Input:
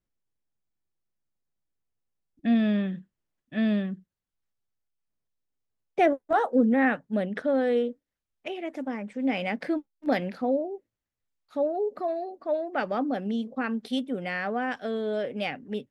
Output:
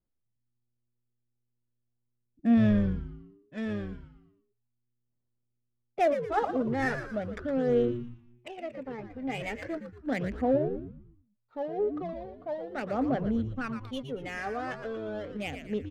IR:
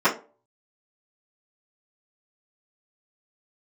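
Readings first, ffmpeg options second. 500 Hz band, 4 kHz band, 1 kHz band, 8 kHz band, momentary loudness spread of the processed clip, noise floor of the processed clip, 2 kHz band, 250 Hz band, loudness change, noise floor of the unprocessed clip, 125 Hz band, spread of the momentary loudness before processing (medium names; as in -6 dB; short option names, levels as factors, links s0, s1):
-3.0 dB, -6.5 dB, -4.0 dB, no reading, 15 LU, -80 dBFS, -5.0 dB, -3.0 dB, -3.0 dB, under -85 dBFS, +4.0 dB, 12 LU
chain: -filter_complex "[0:a]adynamicsmooth=sensitivity=4.5:basefreq=1500,aphaser=in_gain=1:out_gain=1:delay=2.5:decay=0.52:speed=0.38:type=sinusoidal,asplit=6[s0][s1][s2][s3][s4][s5];[s1]adelay=116,afreqshift=-120,volume=0.376[s6];[s2]adelay=232,afreqshift=-240,volume=0.162[s7];[s3]adelay=348,afreqshift=-360,volume=0.0692[s8];[s4]adelay=464,afreqshift=-480,volume=0.0299[s9];[s5]adelay=580,afreqshift=-600,volume=0.0129[s10];[s0][s6][s7][s8][s9][s10]amix=inputs=6:normalize=0,volume=0.501"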